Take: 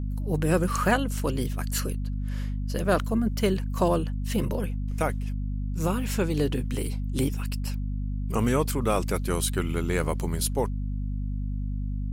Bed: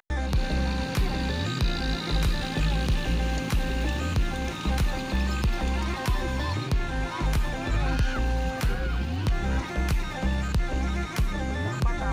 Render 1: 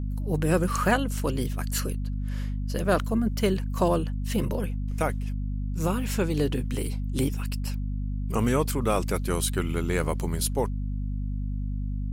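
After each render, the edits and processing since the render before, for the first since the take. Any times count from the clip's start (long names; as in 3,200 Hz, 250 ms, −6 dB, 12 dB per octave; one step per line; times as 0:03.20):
no processing that can be heard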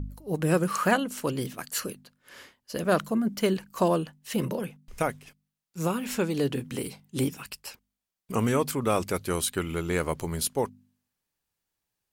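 hum removal 50 Hz, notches 5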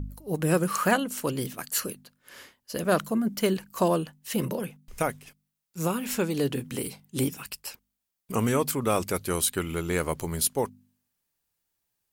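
high-shelf EQ 9,000 Hz +7.5 dB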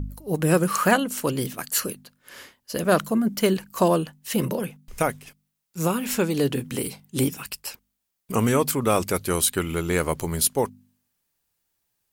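level +4 dB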